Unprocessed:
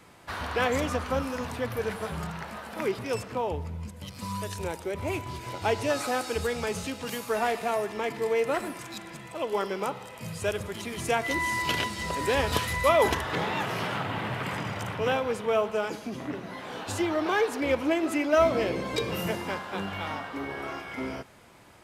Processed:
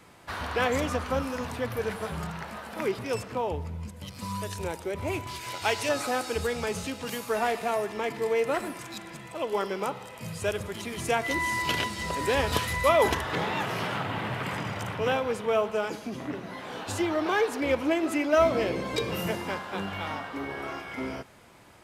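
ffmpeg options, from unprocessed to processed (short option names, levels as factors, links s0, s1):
-filter_complex "[0:a]asettb=1/sr,asplit=3[s0][s1][s2];[s0]atrim=end=5.274[s3];[s1]atrim=start=5.27:end=5.89,asetpts=PTS-STARTPTS,afade=t=in:d=0.004:c=qsin,afade=t=out:st=0.616:d=0.004:c=qsin,tiltshelf=f=890:g=-7[s4];[s2]atrim=start=5.886[s5];[s3][s4]acrossfade=d=0.004:c1=hsin:c2=qsin[s6];[s6][s5]acrossfade=d=0.004:c1=qsin:c2=hsin"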